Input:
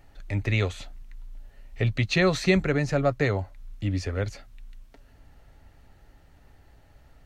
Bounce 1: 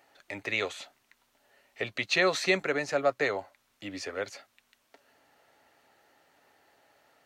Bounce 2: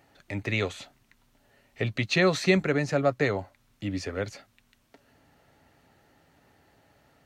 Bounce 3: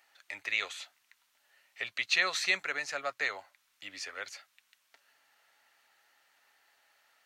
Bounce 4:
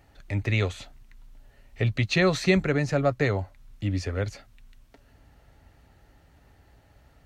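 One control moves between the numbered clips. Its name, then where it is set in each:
high-pass filter, corner frequency: 450, 160, 1,300, 45 Hertz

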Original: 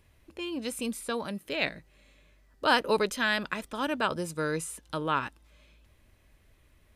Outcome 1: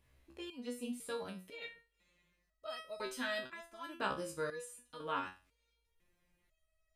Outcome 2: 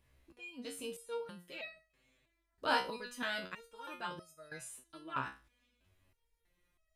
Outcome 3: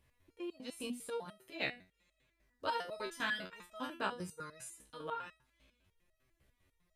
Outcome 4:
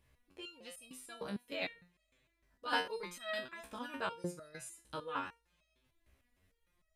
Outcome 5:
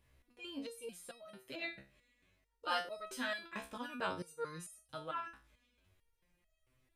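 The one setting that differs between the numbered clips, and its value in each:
step-sequenced resonator, speed: 2, 3.1, 10, 6.6, 4.5 Hertz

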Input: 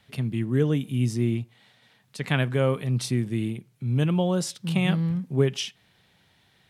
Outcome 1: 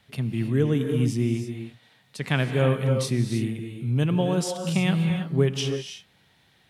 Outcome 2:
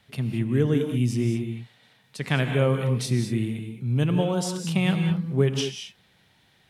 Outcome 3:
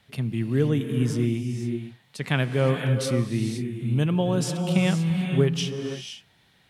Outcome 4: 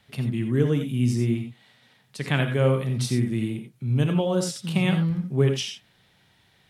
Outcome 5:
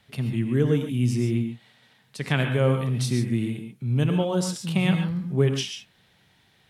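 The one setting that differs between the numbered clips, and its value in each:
reverb whose tail is shaped and stops, gate: 350, 240, 540, 110, 160 milliseconds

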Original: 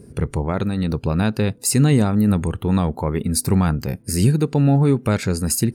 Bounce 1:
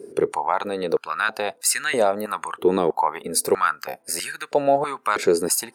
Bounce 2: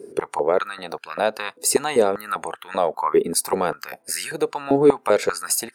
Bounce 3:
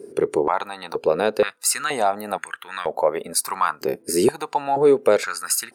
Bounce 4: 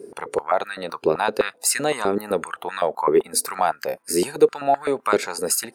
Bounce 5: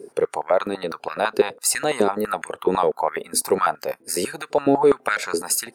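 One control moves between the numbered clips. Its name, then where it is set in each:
high-pass on a step sequencer, speed: 3.1, 5.1, 2.1, 7.8, 12 Hertz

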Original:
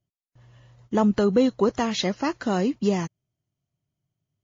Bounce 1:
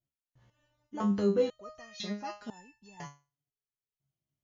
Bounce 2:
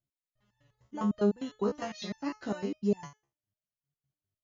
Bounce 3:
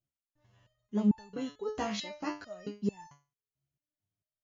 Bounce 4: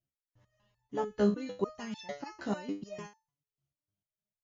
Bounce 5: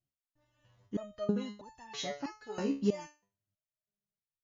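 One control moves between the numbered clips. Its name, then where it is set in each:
step-sequenced resonator, speed: 2, 9.9, 4.5, 6.7, 3.1 Hertz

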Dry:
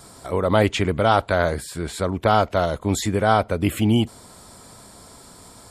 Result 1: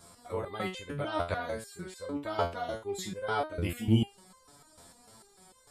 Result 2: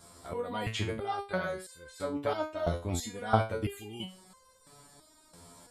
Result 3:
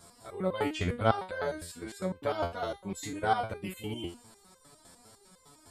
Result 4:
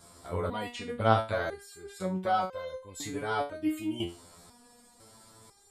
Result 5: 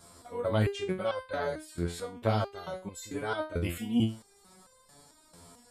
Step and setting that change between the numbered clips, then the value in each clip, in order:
step-sequenced resonator, speed: 6.7, 3, 9.9, 2, 4.5 Hertz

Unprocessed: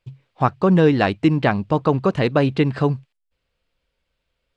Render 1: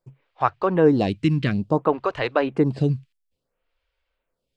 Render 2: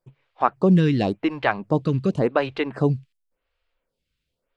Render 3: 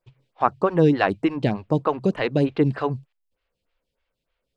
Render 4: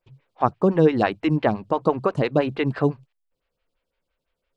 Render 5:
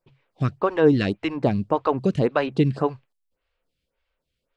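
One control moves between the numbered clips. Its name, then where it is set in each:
phaser with staggered stages, speed: 0.58, 0.91, 3.3, 5.9, 1.8 Hertz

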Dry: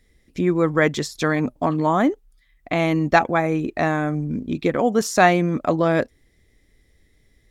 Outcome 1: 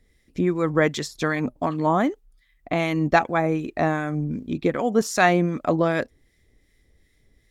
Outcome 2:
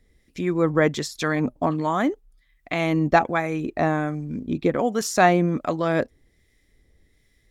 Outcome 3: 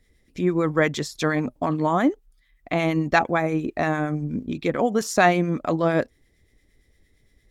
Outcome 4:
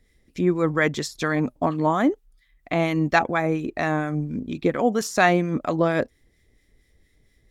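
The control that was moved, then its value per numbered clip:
two-band tremolo in antiphase, speed: 2.6, 1.3, 8.7, 4.3 Hertz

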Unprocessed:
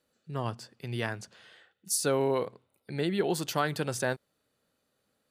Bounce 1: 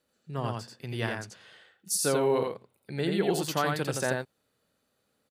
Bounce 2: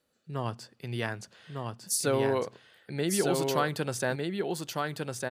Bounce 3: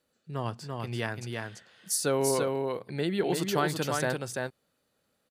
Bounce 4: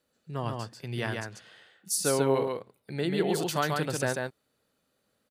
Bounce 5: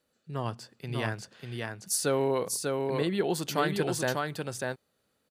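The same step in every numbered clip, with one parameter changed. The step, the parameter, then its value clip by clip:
single-tap delay, delay time: 86, 1,203, 339, 140, 594 milliseconds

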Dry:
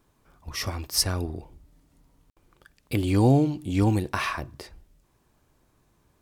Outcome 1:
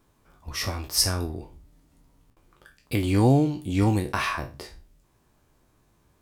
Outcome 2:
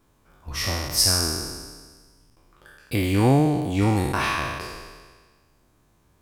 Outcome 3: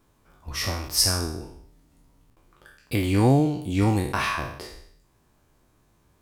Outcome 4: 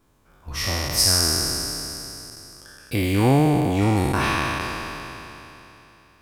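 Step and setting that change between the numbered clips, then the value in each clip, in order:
peak hold with a decay on every bin, RT60: 0.3, 1.52, 0.66, 3.21 seconds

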